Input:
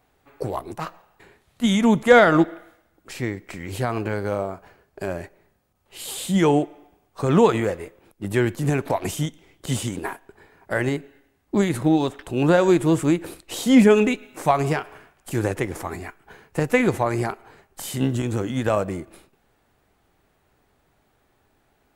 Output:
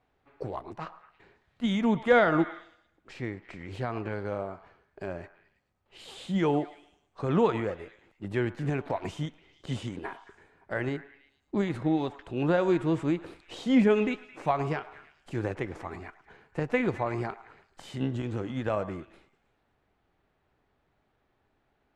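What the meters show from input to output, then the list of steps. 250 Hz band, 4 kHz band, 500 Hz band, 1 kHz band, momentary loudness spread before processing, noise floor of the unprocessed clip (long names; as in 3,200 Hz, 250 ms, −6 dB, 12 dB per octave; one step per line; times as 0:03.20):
−8.0 dB, −10.0 dB, −8.0 dB, −8.0 dB, 17 LU, −66 dBFS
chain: low-pass filter 3,900 Hz 12 dB per octave
echo through a band-pass that steps 109 ms, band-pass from 1,000 Hz, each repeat 0.7 octaves, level −12 dB
level −8 dB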